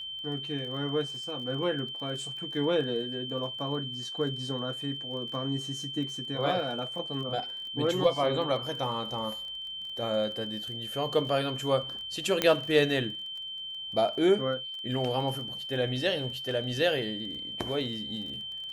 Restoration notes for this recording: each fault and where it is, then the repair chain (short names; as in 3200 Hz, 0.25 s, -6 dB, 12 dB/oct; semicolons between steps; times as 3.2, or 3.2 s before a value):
crackle 22/s -39 dBFS
tone 3100 Hz -36 dBFS
12.42 pop -9 dBFS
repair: de-click; notch 3100 Hz, Q 30